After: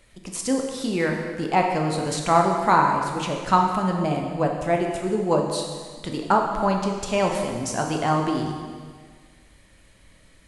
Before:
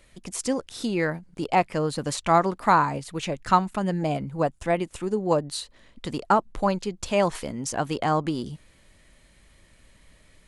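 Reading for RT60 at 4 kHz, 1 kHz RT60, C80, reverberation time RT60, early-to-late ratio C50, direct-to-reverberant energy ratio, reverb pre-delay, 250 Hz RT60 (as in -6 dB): 1.6 s, 1.7 s, 5.0 dB, 1.7 s, 3.5 dB, 1.5 dB, 7 ms, 1.7 s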